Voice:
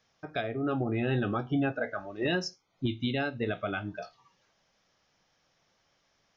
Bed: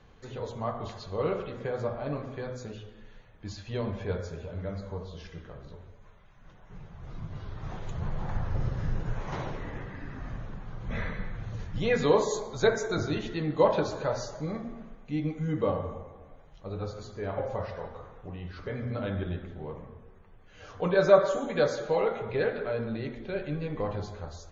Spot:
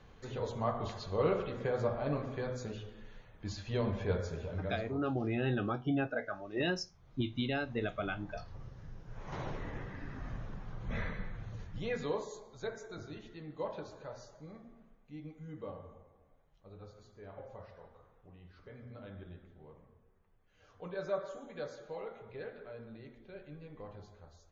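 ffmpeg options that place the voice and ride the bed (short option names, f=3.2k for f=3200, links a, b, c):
-filter_complex "[0:a]adelay=4350,volume=-4dB[a];[1:a]volume=13.5dB,afade=t=out:st=4.52:d=0.57:silence=0.133352,afade=t=in:st=9.08:d=0.42:silence=0.188365,afade=t=out:st=10.94:d=1.39:silence=0.237137[b];[a][b]amix=inputs=2:normalize=0"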